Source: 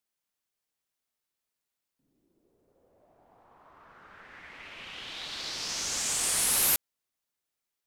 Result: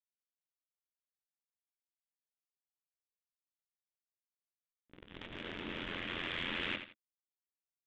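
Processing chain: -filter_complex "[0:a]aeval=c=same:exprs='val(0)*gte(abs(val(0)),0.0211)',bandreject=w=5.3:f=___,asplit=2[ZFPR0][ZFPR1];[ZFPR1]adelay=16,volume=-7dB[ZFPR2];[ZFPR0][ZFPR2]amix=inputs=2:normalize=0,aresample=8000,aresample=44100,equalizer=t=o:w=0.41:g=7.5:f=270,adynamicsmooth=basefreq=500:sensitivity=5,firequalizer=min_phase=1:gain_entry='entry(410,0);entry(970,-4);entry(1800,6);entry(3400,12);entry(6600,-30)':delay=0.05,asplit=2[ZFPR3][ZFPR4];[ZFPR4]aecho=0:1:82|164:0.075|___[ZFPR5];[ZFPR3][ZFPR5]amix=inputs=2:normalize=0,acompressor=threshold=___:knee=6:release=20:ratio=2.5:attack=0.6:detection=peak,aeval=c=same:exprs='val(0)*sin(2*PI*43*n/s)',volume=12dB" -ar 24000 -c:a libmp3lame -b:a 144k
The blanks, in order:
750, 0.0172, -50dB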